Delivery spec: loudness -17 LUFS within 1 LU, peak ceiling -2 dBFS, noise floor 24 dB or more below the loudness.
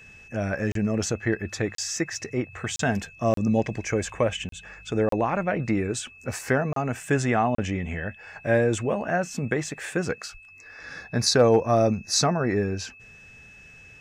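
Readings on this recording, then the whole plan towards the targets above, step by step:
dropouts 8; longest dropout 33 ms; steady tone 2600 Hz; tone level -47 dBFS; loudness -25.5 LUFS; peak -9.0 dBFS; loudness target -17.0 LUFS
-> interpolate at 0.72/1.75/2.76/3.34/4.49/5.09/6.73/7.55, 33 ms; notch 2600 Hz, Q 30; gain +8.5 dB; limiter -2 dBFS

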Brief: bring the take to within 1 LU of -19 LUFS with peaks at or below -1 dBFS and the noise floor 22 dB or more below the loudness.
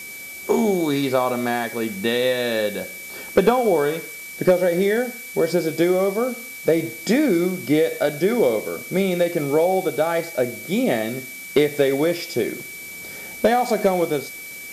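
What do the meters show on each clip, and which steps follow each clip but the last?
steady tone 2300 Hz; tone level -35 dBFS; noise floor -36 dBFS; noise floor target -43 dBFS; loudness -21.0 LUFS; peak -6.5 dBFS; loudness target -19.0 LUFS
-> notch 2300 Hz, Q 30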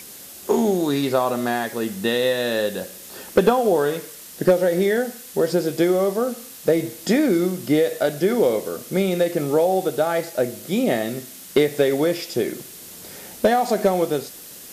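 steady tone none; noise floor -40 dBFS; noise floor target -44 dBFS
-> noise print and reduce 6 dB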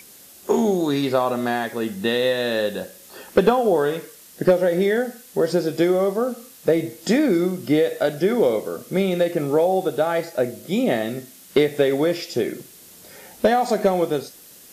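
noise floor -46 dBFS; loudness -21.5 LUFS; peak -6.5 dBFS; loudness target -19.0 LUFS
-> gain +2.5 dB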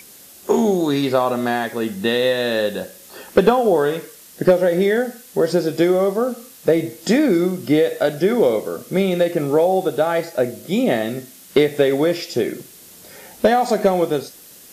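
loudness -19.0 LUFS; peak -4.0 dBFS; noise floor -44 dBFS

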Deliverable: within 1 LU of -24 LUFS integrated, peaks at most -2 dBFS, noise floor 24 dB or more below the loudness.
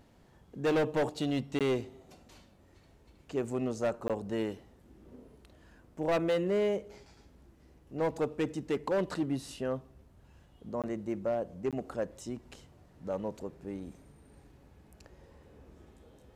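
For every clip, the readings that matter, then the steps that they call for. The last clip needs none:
clipped 1.7%; flat tops at -24.5 dBFS; dropouts 4; longest dropout 17 ms; loudness -34.0 LUFS; peak -24.5 dBFS; loudness target -24.0 LUFS
-> clip repair -24.5 dBFS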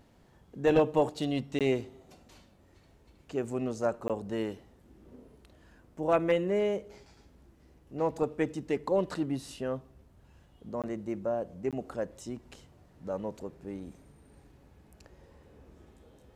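clipped 0.0%; dropouts 4; longest dropout 17 ms
-> interpolate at 1.59/4.08/10.82/11.71, 17 ms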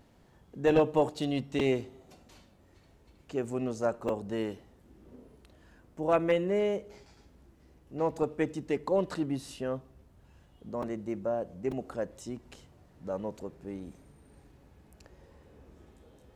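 dropouts 0; loudness -32.0 LUFS; peak -15.5 dBFS; loudness target -24.0 LUFS
-> gain +8 dB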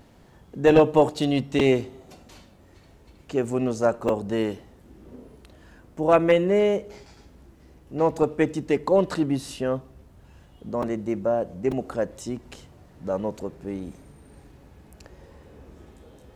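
loudness -24.0 LUFS; peak -7.5 dBFS; noise floor -53 dBFS

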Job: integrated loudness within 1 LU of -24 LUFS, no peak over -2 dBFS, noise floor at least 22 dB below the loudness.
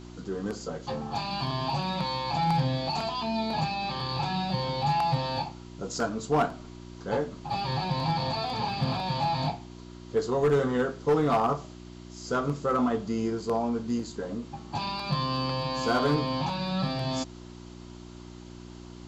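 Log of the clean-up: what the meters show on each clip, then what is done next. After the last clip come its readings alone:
clipped 0.4%; flat tops at -18.0 dBFS; hum 60 Hz; harmonics up to 360 Hz; hum level -43 dBFS; loudness -29.0 LUFS; peak -18.0 dBFS; loudness target -24.0 LUFS
-> clip repair -18 dBFS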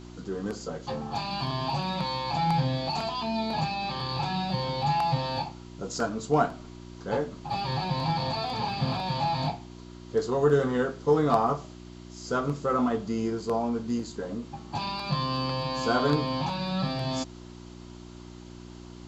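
clipped 0.0%; hum 60 Hz; harmonics up to 360 Hz; hum level -44 dBFS
-> de-hum 60 Hz, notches 6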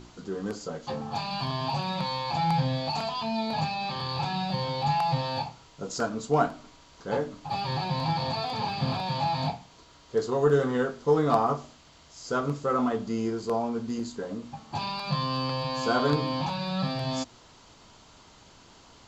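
hum none; loudness -29.0 LUFS; peak -8.5 dBFS; loudness target -24.0 LUFS
-> gain +5 dB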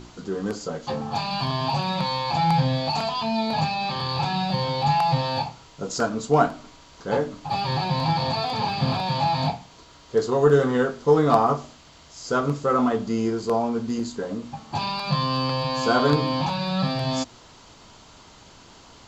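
loudness -24.0 LUFS; peak -3.5 dBFS; noise floor -50 dBFS

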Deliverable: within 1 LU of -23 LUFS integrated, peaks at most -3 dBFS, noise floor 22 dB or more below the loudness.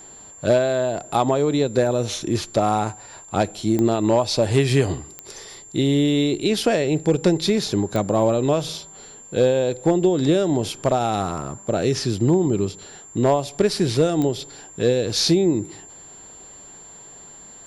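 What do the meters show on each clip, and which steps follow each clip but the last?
clicks 4; steady tone 7300 Hz; tone level -41 dBFS; loudness -21.0 LUFS; peak -7.5 dBFS; loudness target -23.0 LUFS
-> de-click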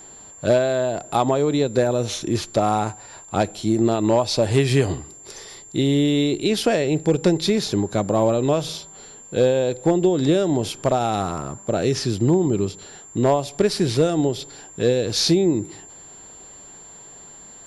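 clicks 0; steady tone 7300 Hz; tone level -41 dBFS
-> notch 7300 Hz, Q 30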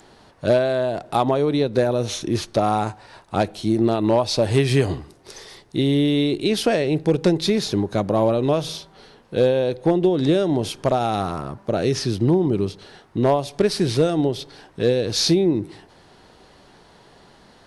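steady tone none; loudness -21.0 LUFS; peak -7.5 dBFS; loudness target -23.0 LUFS
-> gain -2 dB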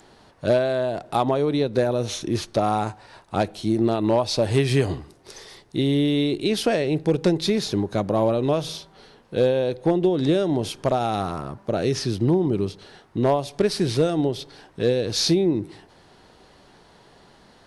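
loudness -23.0 LUFS; peak -9.5 dBFS; noise floor -54 dBFS

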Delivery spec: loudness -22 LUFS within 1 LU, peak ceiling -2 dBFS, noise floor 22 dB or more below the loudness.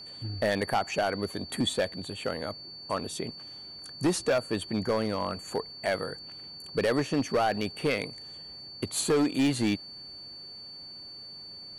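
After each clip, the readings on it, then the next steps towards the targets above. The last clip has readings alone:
clipped 1.5%; flat tops at -20.0 dBFS; steady tone 4500 Hz; tone level -42 dBFS; loudness -30.0 LUFS; peak -20.0 dBFS; loudness target -22.0 LUFS
-> clip repair -20 dBFS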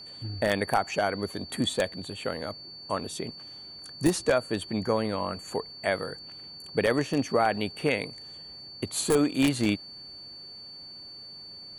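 clipped 0.0%; steady tone 4500 Hz; tone level -42 dBFS
-> notch 4500 Hz, Q 30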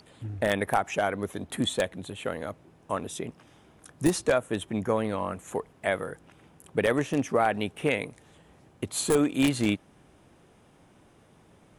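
steady tone none; loudness -28.5 LUFS; peak -10.5 dBFS; loudness target -22.0 LUFS
-> gain +6.5 dB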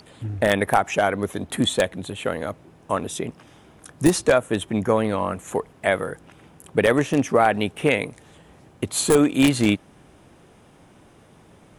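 loudness -22.0 LUFS; peak -4.0 dBFS; noise floor -52 dBFS

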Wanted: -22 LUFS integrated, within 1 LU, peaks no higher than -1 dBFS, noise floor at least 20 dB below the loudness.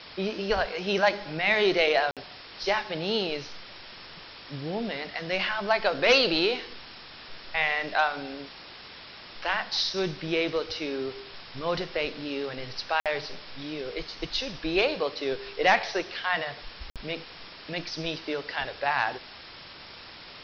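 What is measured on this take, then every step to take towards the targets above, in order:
dropouts 3; longest dropout 57 ms; noise floor -46 dBFS; noise floor target -48 dBFS; loudness -28.0 LUFS; peak -11.0 dBFS; loudness target -22.0 LUFS
-> interpolate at 2.11/13/16.9, 57 ms; noise print and reduce 6 dB; gain +6 dB

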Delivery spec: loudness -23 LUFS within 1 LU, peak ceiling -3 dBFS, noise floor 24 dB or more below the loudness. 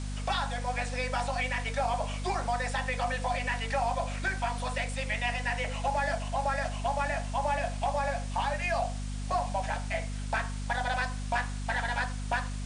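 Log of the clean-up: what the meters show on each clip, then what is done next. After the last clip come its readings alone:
hum 50 Hz; harmonics up to 250 Hz; hum level -33 dBFS; noise floor -35 dBFS; noise floor target -56 dBFS; loudness -31.5 LUFS; peak -17.0 dBFS; loudness target -23.0 LUFS
-> notches 50/100/150/200/250 Hz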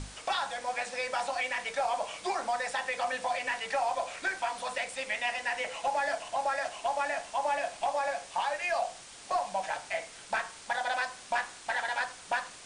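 hum none; noise floor -49 dBFS; noise floor target -57 dBFS
-> denoiser 8 dB, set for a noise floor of -49 dBFS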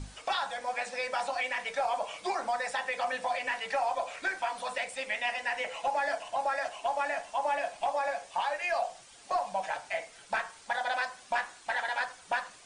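noise floor -54 dBFS; noise floor target -57 dBFS
-> denoiser 6 dB, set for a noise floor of -54 dBFS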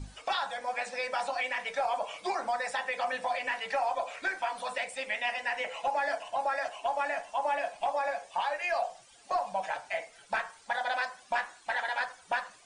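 noise floor -57 dBFS; loudness -32.5 LUFS; peak -18.5 dBFS; loudness target -23.0 LUFS
-> gain +9.5 dB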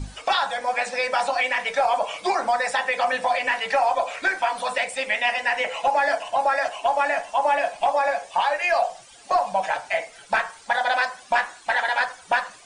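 loudness -23.0 LUFS; peak -9.0 dBFS; noise floor -48 dBFS

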